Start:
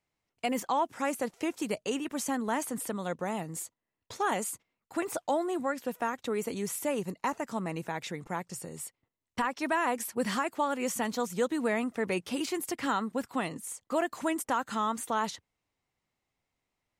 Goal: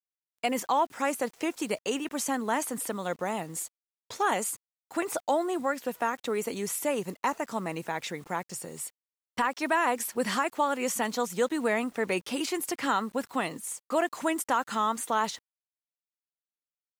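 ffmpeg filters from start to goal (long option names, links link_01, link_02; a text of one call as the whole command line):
ffmpeg -i in.wav -af "lowshelf=frequency=170:gain=-10.5,acrusher=bits=9:mix=0:aa=0.000001,volume=3.5dB" out.wav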